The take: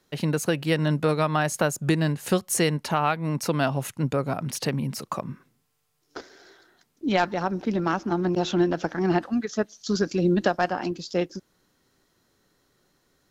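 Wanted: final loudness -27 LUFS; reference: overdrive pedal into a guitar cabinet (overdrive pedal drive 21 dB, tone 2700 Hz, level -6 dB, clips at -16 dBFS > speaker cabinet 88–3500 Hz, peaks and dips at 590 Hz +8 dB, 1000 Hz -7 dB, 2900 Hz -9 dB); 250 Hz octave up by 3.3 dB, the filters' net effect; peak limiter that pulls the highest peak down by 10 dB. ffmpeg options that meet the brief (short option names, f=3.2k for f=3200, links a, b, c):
-filter_complex "[0:a]equalizer=f=250:t=o:g=5,alimiter=limit=-16dB:level=0:latency=1,asplit=2[a][b];[b]highpass=f=720:p=1,volume=21dB,asoftclip=type=tanh:threshold=-16dB[c];[a][c]amix=inputs=2:normalize=0,lowpass=f=2.7k:p=1,volume=-6dB,highpass=88,equalizer=f=590:t=q:w=4:g=8,equalizer=f=1k:t=q:w=4:g=-7,equalizer=f=2.9k:t=q:w=4:g=-9,lowpass=f=3.5k:w=0.5412,lowpass=f=3.5k:w=1.3066,volume=-3dB"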